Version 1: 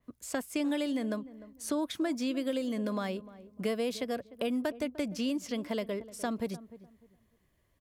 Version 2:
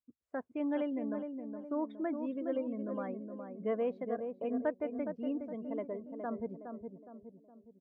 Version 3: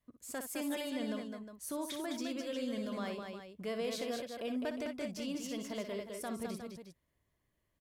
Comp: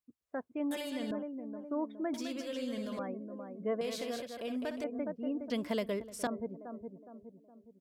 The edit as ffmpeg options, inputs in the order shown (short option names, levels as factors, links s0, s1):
-filter_complex "[2:a]asplit=3[s0][s1][s2];[1:a]asplit=5[s3][s4][s5][s6][s7];[s3]atrim=end=0.712[s8];[s0]atrim=start=0.708:end=1.112[s9];[s4]atrim=start=1.108:end=2.142[s10];[s1]atrim=start=2.138:end=2.992[s11];[s5]atrim=start=2.988:end=3.812[s12];[s2]atrim=start=3.808:end=4.842[s13];[s6]atrim=start=4.838:end=5.502[s14];[0:a]atrim=start=5.498:end=6.272[s15];[s7]atrim=start=6.268[s16];[s8][s9]acrossfade=d=0.004:c1=hsin:c2=hsin[s17];[s17][s10]acrossfade=d=0.004:c1=hsin:c2=hsin[s18];[s18][s11]acrossfade=d=0.004:c1=hsin:c2=hsin[s19];[s19][s12]acrossfade=d=0.004:c1=hsin:c2=hsin[s20];[s20][s13]acrossfade=d=0.004:c1=hsin:c2=hsin[s21];[s21][s14]acrossfade=d=0.004:c1=hsin:c2=hsin[s22];[s22][s15]acrossfade=d=0.004:c1=hsin:c2=hsin[s23];[s23][s16]acrossfade=d=0.004:c1=hsin:c2=hsin"